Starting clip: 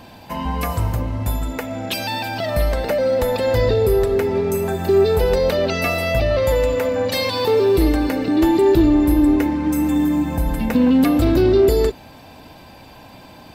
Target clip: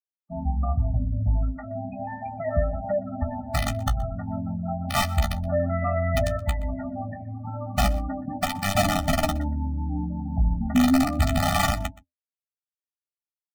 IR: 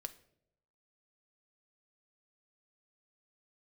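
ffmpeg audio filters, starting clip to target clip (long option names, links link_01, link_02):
-filter_complex "[0:a]lowpass=frequency=2000:width=0.5412,lowpass=frequency=2000:width=1.3066,bandreject=frequency=216.2:width_type=h:width=4,bandreject=frequency=432.4:width_type=h:width=4,bandreject=frequency=648.6:width_type=h:width=4,bandreject=frequency=864.8:width_type=h:width=4,bandreject=frequency=1081:width_type=h:width=4,bandreject=frequency=1297.2:width_type=h:width=4,bandreject=frequency=1513.4:width_type=h:width=4,bandreject=frequency=1729.6:width_type=h:width=4,bandreject=frequency=1945.8:width_type=h:width=4,bandreject=frequency=2162:width_type=h:width=4,bandreject=frequency=2378.2:width_type=h:width=4,bandreject=frequency=2594.4:width_type=h:width=4,bandreject=frequency=2810.6:width_type=h:width=4,bandreject=frequency=3026.8:width_type=h:width=4,bandreject=frequency=3243:width_type=h:width=4,bandreject=frequency=3459.2:width_type=h:width=4,bandreject=frequency=3675.4:width_type=h:width=4,bandreject=frequency=3891.6:width_type=h:width=4,bandreject=frequency=4107.8:width_type=h:width=4,bandreject=frequency=4324:width_type=h:width=4,bandreject=frequency=4540.2:width_type=h:width=4,bandreject=frequency=4756.4:width_type=h:width=4,bandreject=frequency=4972.6:width_type=h:width=4,bandreject=frequency=5188.8:width_type=h:width=4,bandreject=frequency=5405:width_type=h:width=4,bandreject=frequency=5621.2:width_type=h:width=4,bandreject=frequency=5837.4:width_type=h:width=4,bandreject=frequency=6053.6:width_type=h:width=4,bandreject=frequency=6269.8:width_type=h:width=4,bandreject=frequency=6486:width_type=h:width=4,bandreject=frequency=6702.2:width_type=h:width=4,bandreject=frequency=6918.4:width_type=h:width=4,bandreject=frequency=7134.6:width_type=h:width=4,bandreject=frequency=7350.8:width_type=h:width=4,afftfilt=real='re*gte(hypot(re,im),0.112)':imag='im*gte(hypot(re,im),0.112)':win_size=1024:overlap=0.75,equalizer=frequency=79:width_type=o:width=0.34:gain=6.5,aeval=exprs='(mod(2.51*val(0)+1,2)-1)/2.51':channel_layout=same,flanger=delay=9.9:depth=8.7:regen=24:speed=0.34:shape=triangular,asplit=2[link_01][link_02];[link_02]aecho=0:1:123:0.0841[link_03];[link_01][link_03]amix=inputs=2:normalize=0,afftfilt=real='re*eq(mod(floor(b*sr/1024/290),2),0)':imag='im*eq(mod(floor(b*sr/1024/290),2),0)':win_size=1024:overlap=0.75"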